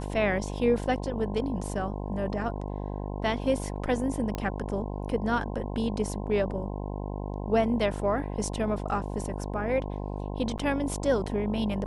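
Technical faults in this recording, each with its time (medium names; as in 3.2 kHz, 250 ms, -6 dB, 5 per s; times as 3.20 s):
buzz 50 Hz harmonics 21 -34 dBFS
4.35 s: pop -18 dBFS
10.58–10.59 s: dropout 7.9 ms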